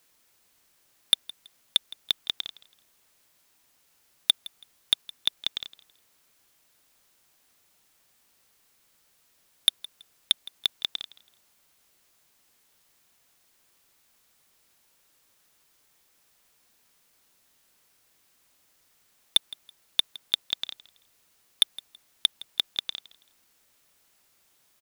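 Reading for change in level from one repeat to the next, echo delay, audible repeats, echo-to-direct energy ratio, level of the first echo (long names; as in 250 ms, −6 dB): −11.5 dB, 164 ms, 2, −19.5 dB, −20.0 dB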